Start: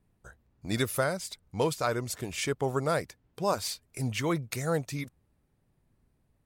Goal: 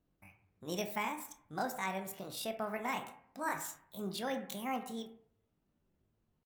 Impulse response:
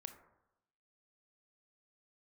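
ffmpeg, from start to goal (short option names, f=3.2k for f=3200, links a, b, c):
-filter_complex "[0:a]asetrate=70004,aresample=44100,atempo=0.629961[a];[1:a]atrim=start_sample=2205,asetrate=61740,aresample=44100[b];[a][b]afir=irnorm=-1:irlink=0"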